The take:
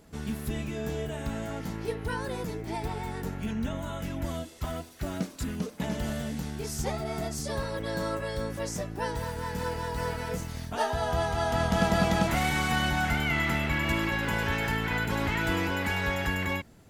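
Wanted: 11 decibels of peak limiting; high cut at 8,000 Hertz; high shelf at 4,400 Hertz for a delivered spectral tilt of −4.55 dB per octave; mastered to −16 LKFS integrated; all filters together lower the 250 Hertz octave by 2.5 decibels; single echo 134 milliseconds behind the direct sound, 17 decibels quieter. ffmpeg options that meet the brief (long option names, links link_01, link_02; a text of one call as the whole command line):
ffmpeg -i in.wav -af "lowpass=8000,equalizer=frequency=250:width_type=o:gain=-3.5,highshelf=frequency=4400:gain=4,alimiter=limit=-24dB:level=0:latency=1,aecho=1:1:134:0.141,volume=18dB" out.wav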